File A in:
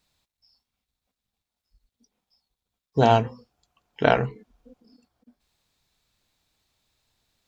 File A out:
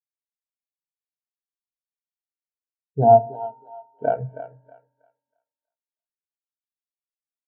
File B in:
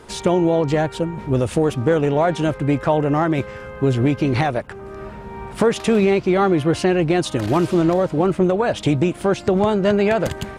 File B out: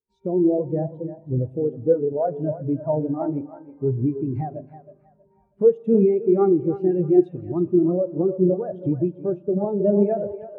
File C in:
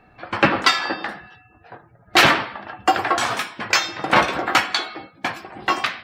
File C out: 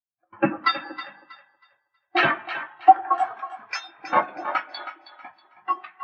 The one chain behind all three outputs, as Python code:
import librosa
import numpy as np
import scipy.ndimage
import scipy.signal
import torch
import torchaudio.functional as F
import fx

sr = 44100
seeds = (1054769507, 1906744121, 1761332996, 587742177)

y = fx.echo_thinned(x, sr, ms=320, feedback_pct=58, hz=300.0, wet_db=-5.0)
y = fx.rev_spring(y, sr, rt60_s=2.5, pass_ms=(39,), chirp_ms=20, drr_db=8.0)
y = fx.spectral_expand(y, sr, expansion=2.5)
y = y * librosa.db_to_amplitude(-1.5)